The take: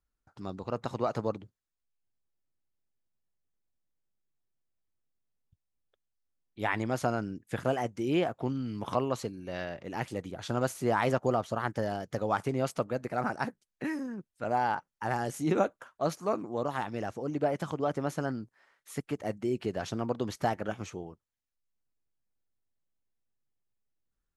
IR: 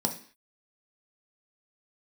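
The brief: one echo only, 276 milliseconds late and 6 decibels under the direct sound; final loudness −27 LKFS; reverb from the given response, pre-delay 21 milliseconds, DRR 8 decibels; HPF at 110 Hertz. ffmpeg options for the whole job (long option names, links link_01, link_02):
-filter_complex "[0:a]highpass=110,aecho=1:1:276:0.501,asplit=2[link_01][link_02];[1:a]atrim=start_sample=2205,adelay=21[link_03];[link_02][link_03]afir=irnorm=-1:irlink=0,volume=-15dB[link_04];[link_01][link_04]amix=inputs=2:normalize=0,volume=3.5dB"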